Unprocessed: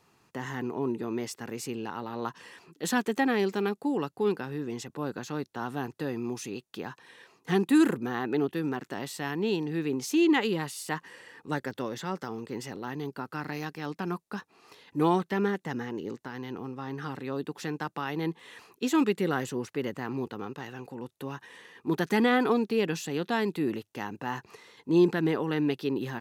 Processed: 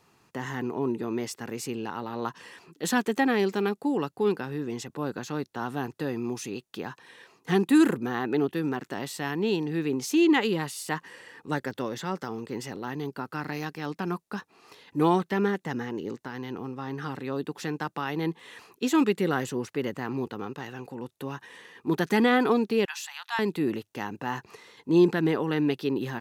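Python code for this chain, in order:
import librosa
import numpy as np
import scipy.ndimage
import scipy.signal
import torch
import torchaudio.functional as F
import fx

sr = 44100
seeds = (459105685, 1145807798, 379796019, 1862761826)

y = fx.ellip_highpass(x, sr, hz=870.0, order=4, stop_db=50, at=(22.85, 23.39))
y = y * 10.0 ** (2.0 / 20.0)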